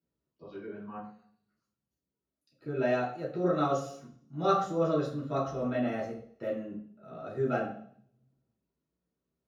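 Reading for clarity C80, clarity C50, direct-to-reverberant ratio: 10.0 dB, 6.5 dB, −8.0 dB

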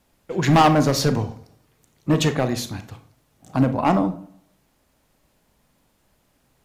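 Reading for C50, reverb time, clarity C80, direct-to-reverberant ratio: 13.0 dB, 0.45 s, 18.0 dB, 9.5 dB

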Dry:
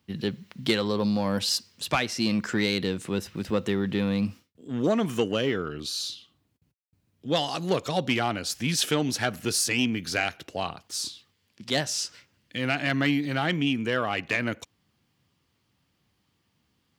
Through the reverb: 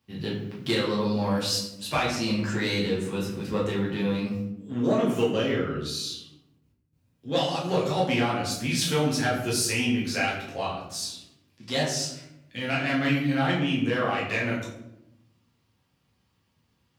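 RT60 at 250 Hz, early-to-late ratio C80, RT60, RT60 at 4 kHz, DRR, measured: 1.3 s, 7.5 dB, 0.85 s, 0.50 s, −6.5 dB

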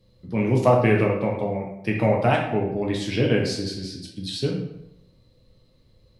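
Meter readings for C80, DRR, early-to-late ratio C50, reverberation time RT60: 7.5 dB, −1.0 dB, 4.0 dB, 0.80 s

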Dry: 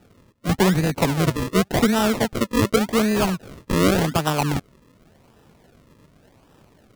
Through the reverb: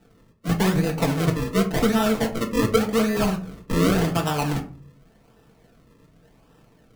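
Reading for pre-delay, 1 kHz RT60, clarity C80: 4 ms, 0.40 s, 17.5 dB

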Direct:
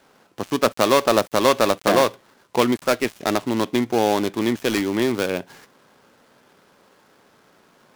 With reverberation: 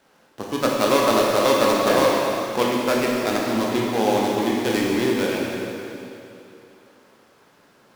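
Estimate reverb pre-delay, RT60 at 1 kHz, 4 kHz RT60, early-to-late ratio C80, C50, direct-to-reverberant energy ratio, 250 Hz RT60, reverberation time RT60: 7 ms, 2.9 s, 2.7 s, 0.0 dB, −1.5 dB, −3.0 dB, 2.8 s, 2.9 s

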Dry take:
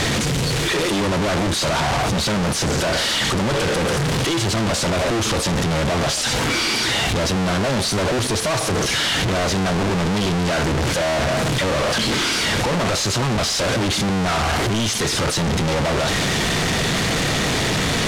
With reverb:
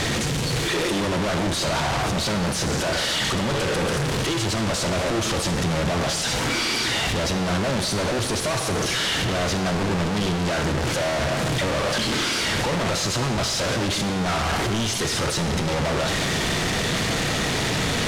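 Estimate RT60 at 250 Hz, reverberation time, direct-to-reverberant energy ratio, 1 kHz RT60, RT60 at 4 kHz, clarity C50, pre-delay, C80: 1.5 s, 1.6 s, 7.5 dB, 1.7 s, 1.4 s, 8.5 dB, 32 ms, 9.5 dB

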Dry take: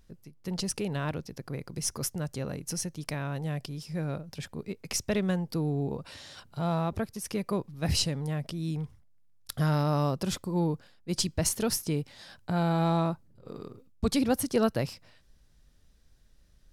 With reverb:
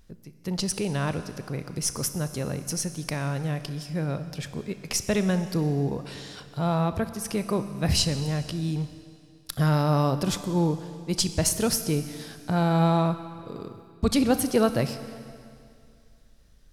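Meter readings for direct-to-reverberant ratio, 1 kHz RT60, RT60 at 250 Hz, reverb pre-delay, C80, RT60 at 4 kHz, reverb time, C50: 10.0 dB, 2.4 s, 2.4 s, 31 ms, 12.0 dB, 2.4 s, 2.4 s, 11.0 dB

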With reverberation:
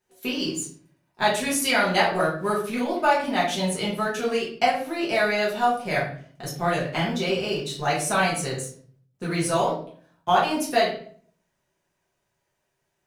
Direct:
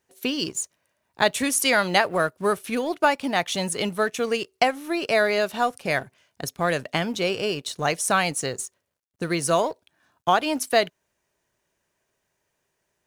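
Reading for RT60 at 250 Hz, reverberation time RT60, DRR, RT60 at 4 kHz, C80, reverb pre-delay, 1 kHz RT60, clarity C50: 0.70 s, 0.50 s, −7.5 dB, 0.40 s, 10.0 dB, 5 ms, 0.45 s, 5.0 dB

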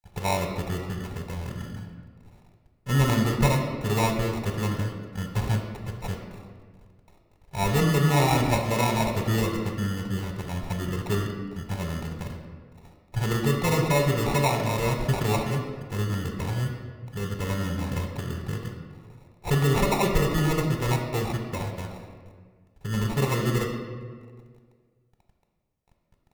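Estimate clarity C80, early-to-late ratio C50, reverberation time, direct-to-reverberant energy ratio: 6.5 dB, 5.0 dB, 1.7 s, 3.0 dB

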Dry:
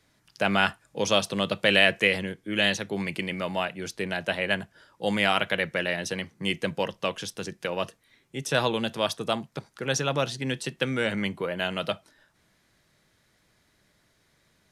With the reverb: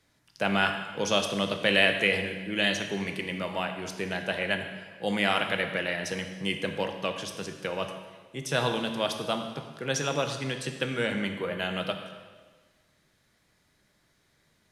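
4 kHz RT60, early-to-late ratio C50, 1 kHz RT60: 1.3 s, 7.0 dB, 1.4 s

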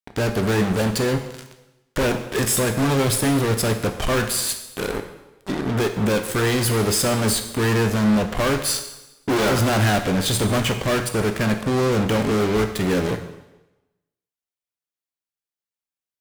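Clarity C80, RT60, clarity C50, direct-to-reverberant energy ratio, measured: 11.0 dB, 1.0 s, 9.0 dB, 6.0 dB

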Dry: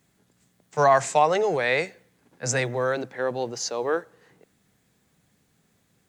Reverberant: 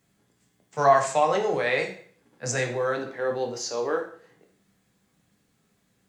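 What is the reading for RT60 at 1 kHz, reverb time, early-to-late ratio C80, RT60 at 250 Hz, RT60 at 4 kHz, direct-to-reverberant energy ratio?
0.50 s, 0.50 s, 12.5 dB, 0.50 s, 0.45 s, 1.5 dB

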